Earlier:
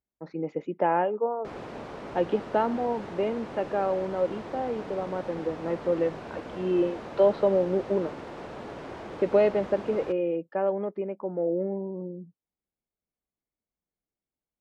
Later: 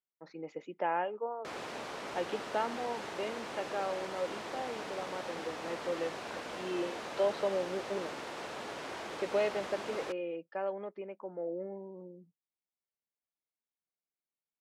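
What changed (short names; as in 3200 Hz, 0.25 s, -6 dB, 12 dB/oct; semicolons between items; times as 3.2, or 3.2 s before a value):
speech -6.5 dB; master: add tilt +3.5 dB/oct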